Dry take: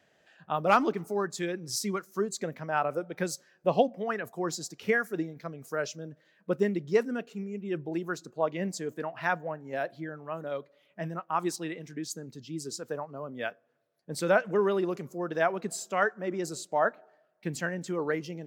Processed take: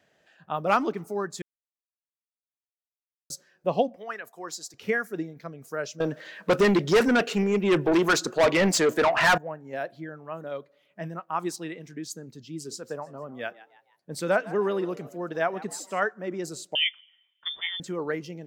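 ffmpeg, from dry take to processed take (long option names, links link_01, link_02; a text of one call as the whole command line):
ffmpeg -i in.wav -filter_complex "[0:a]asettb=1/sr,asplit=3[link_01][link_02][link_03];[link_01]atrim=end=3.964[link_04];[link_02]atrim=start=3.96:end=4.74,asetpts=PTS-STARTPTS,afade=type=in:duration=0.004:curve=qsin,afade=type=out:start_time=0.776:duration=0.004:curve=qsin,highpass=frequency=990:poles=1[link_05];[link_03]atrim=start=4.736[link_06];[link_04][link_05]acrossfade=duration=0.004:curve1=hsin:curve2=qsin[link_07];[link_07][link_06]acrossfade=duration=0.004:curve1=qsin:curve2=hsin,asettb=1/sr,asplit=3[link_08][link_09][link_10];[link_08]atrim=end=6.004[link_11];[link_09]atrim=start=6:end=9.38,asetpts=PTS-STARTPTS,afade=type=in:duration=0.004:curve=qsin,afade=type=out:start_time=3.376:duration=0.004:curve=qsin,asplit=2[link_12][link_13];[link_13]highpass=frequency=720:poles=1,volume=30dB,asoftclip=type=tanh:threshold=-11.5dB[link_14];[link_12][link_14]amix=inputs=2:normalize=0,lowpass=frequency=5300:poles=1,volume=-6dB[link_15];[link_10]atrim=start=9.376[link_16];[link_11][link_15]acrossfade=duration=0.004:curve1=hsin:curve2=qsin[link_17];[link_17][link_16]acrossfade=duration=0.004:curve1=qsin:curve2=hsin,asettb=1/sr,asplit=3[link_18][link_19][link_20];[link_18]atrim=end=12.424[link_21];[link_19]atrim=start=12.42:end=16,asetpts=PTS-STARTPTS,afade=type=in:duration=0.004:curve=qsin,afade=type=out:start_time=3.576:duration=0.004:curve=qsin,asplit=4[link_22][link_23][link_24][link_25];[link_23]adelay=155,afreqshift=98,volume=-18dB[link_26];[link_24]adelay=310,afreqshift=196,volume=-25.5dB[link_27];[link_25]adelay=465,afreqshift=294,volume=-33.1dB[link_28];[link_22][link_26][link_27][link_28]amix=inputs=4:normalize=0,atrim=end_sample=157878[link_29];[link_20]atrim=start=15.996[link_30];[link_21][link_29]acrossfade=duration=0.004:curve1=hsin:curve2=qsin[link_31];[link_31][link_30]acrossfade=duration=0.004:curve1=qsin:curve2=hsin,asettb=1/sr,asplit=3[link_32][link_33][link_34];[link_32]atrim=end=16.754[link_35];[link_33]atrim=start=16.75:end=17.8,asetpts=PTS-STARTPTS,afade=type=in:duration=0.004:curve=qsin,afade=type=out:start_time=1.046:duration=0.004:curve=qsin,lowpass=frequency=3100:width_type=q:width=0.5098,lowpass=frequency=3100:width_type=q:width=0.6013,lowpass=frequency=3100:width_type=q:width=0.9,lowpass=frequency=3100:width_type=q:width=2.563,afreqshift=-3700[link_36];[link_34]atrim=start=17.796[link_37];[link_35][link_36]acrossfade=duration=0.004:curve1=hsin:curve2=qsin[link_38];[link_38][link_37]acrossfade=duration=0.004:curve1=qsin:curve2=hsin,asplit=3[link_39][link_40][link_41];[link_39]atrim=end=1.42,asetpts=PTS-STARTPTS,afade=type=out:start_time=1.416:duration=0.004:curve=hsin[link_42];[link_40]atrim=start=1.42:end=3.3,asetpts=PTS-STARTPTS,volume=0[link_43];[link_41]atrim=start=3.3,asetpts=PTS-STARTPTS,afade=type=in:duration=0.004:curve=hsin[link_44];[link_42][link_43][link_44]concat=n=3:v=0:a=1" out.wav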